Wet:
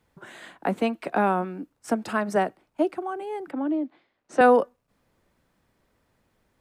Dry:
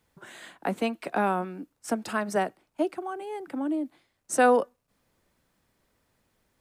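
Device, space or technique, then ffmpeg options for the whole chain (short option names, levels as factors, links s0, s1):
behind a face mask: -filter_complex "[0:a]asettb=1/sr,asplit=3[s0][s1][s2];[s0]atrim=end=3.514[s3];[s1]atrim=start=3.51:end=4.41,asetpts=PTS-STARTPTS,afade=t=in:d=0.004:c=qsin,afade=t=out:st=0.896:d=0.004:c=qsin,acrossover=split=190 5000:gain=0.224 1 0.0631[s4][s5][s6];[s4][s5][s6]amix=inputs=3:normalize=0[s7];[s2]atrim=start=4.406[s8];[s3][s7]acrossfade=d=0.004:c1=hsin:c2=qsin[s9];[s9][s8]acrossfade=d=0.004:c1=qsin:c2=hsin,highshelf=f=3400:g=-7.5,volume=1.5"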